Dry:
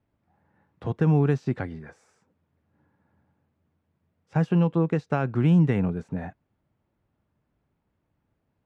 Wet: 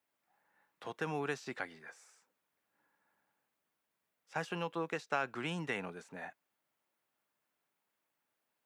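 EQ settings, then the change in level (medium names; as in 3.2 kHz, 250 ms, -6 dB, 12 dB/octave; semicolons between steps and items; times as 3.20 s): high-pass 240 Hz 6 dB/octave; differentiator; treble shelf 2.9 kHz -9.5 dB; +13.5 dB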